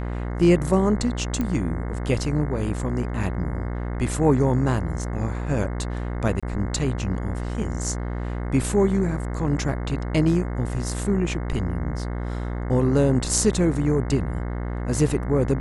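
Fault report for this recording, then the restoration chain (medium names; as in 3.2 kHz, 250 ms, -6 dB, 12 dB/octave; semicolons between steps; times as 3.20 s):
buzz 60 Hz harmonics 36 -28 dBFS
1.41 s: pop -14 dBFS
6.40–6.43 s: dropout 26 ms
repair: de-click; de-hum 60 Hz, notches 36; interpolate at 6.40 s, 26 ms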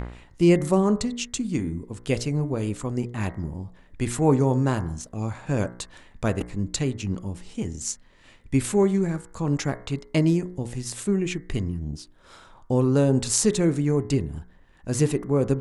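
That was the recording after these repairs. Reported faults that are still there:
nothing left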